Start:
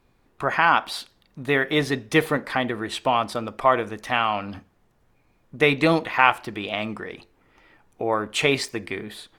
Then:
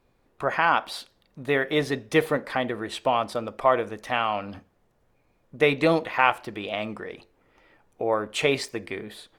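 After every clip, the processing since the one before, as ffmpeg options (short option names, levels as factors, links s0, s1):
-af "equalizer=f=540:w=1.9:g=5.5,volume=0.631"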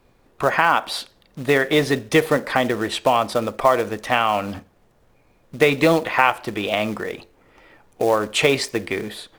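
-filter_complex "[0:a]acompressor=threshold=0.0708:ratio=2,acrossover=split=760|1200[s0][s1][s2];[s0]acrusher=bits=4:mode=log:mix=0:aa=0.000001[s3];[s3][s1][s2]amix=inputs=3:normalize=0,volume=2.66"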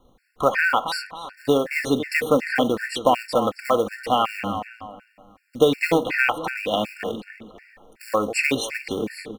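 -filter_complex "[0:a]aecho=1:1:3.9:0.36,asplit=2[s0][s1];[s1]adelay=271,lowpass=f=3400:p=1,volume=0.316,asplit=2[s2][s3];[s3]adelay=271,lowpass=f=3400:p=1,volume=0.39,asplit=2[s4][s5];[s5]adelay=271,lowpass=f=3400:p=1,volume=0.39,asplit=2[s6][s7];[s7]adelay=271,lowpass=f=3400:p=1,volume=0.39[s8];[s0][s2][s4][s6][s8]amix=inputs=5:normalize=0,afftfilt=real='re*gt(sin(2*PI*2.7*pts/sr)*(1-2*mod(floor(b*sr/1024/1400),2)),0)':imag='im*gt(sin(2*PI*2.7*pts/sr)*(1-2*mod(floor(b*sr/1024/1400),2)),0)':win_size=1024:overlap=0.75"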